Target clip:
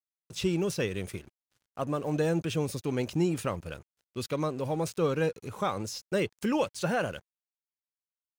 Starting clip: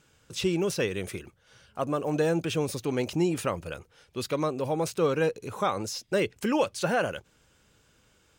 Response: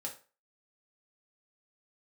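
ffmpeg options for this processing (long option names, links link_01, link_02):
-af "aeval=exprs='sgn(val(0))*max(abs(val(0))-0.00316,0)':channel_layout=same,bass=frequency=250:gain=5,treble=frequency=4000:gain=1,volume=-3dB"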